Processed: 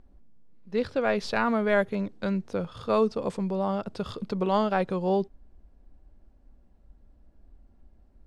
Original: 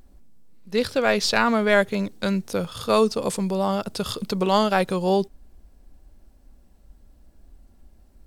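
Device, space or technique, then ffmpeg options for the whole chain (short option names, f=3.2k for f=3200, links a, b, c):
through cloth: -filter_complex "[0:a]asettb=1/sr,asplit=3[a][b][c];[a]atrim=end=1.184[d];[b]atrim=start=1.18:end=1.96,asetpts=PTS-STARTPTS,afade=t=in:d=0.004:c=qsin,afade=t=out:st=0.776:d=0.004:c=qsin,equalizer=f=11k:w=2.7:g=13[e];[c]atrim=start=1.956[f];[d][e]acrossfade=d=0.004:c1=hsin:c2=qsin[g];[g][f]acrossfade=d=0.004:c1=qsin:c2=hsin,lowpass=8.7k,highshelf=f=3.7k:g=-17,volume=-4dB"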